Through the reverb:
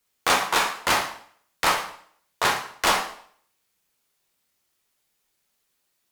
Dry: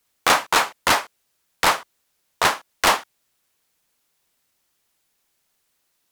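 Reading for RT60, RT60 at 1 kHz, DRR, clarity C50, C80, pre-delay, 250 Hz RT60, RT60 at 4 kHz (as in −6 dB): 0.55 s, 0.55 s, 1.5 dB, 7.5 dB, 11.0 dB, 4 ms, 0.55 s, 0.55 s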